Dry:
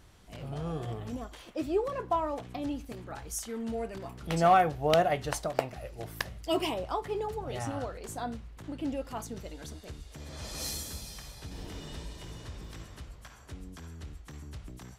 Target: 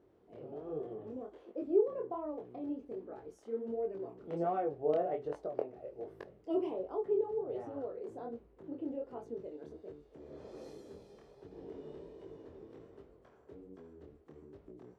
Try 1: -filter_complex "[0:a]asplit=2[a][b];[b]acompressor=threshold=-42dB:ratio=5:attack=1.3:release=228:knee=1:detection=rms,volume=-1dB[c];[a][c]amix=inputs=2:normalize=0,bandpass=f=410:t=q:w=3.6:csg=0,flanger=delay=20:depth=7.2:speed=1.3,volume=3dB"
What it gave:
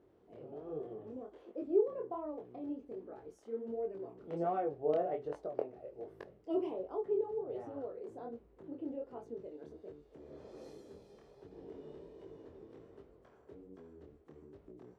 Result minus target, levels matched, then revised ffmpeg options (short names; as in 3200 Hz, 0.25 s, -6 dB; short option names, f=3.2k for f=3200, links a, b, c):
compressor: peak gain reduction +7 dB
-filter_complex "[0:a]asplit=2[a][b];[b]acompressor=threshold=-33dB:ratio=5:attack=1.3:release=228:knee=1:detection=rms,volume=-1dB[c];[a][c]amix=inputs=2:normalize=0,bandpass=f=410:t=q:w=3.6:csg=0,flanger=delay=20:depth=7.2:speed=1.3,volume=3dB"